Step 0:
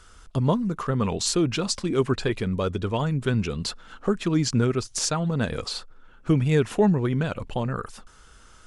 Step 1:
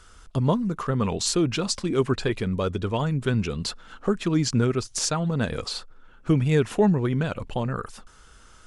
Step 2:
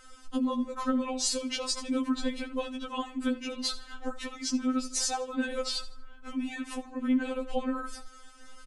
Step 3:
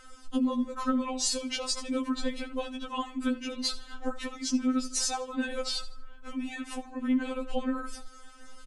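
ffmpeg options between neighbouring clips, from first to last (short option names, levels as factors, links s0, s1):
-af anull
-af "aecho=1:1:79|158|237:0.141|0.0466|0.0154,acompressor=threshold=0.0562:ratio=6,afftfilt=real='re*3.46*eq(mod(b,12),0)':imag='im*3.46*eq(mod(b,12),0)':win_size=2048:overlap=0.75,volume=1.26"
-af "aphaser=in_gain=1:out_gain=1:delay=1.8:decay=0.25:speed=0.24:type=triangular"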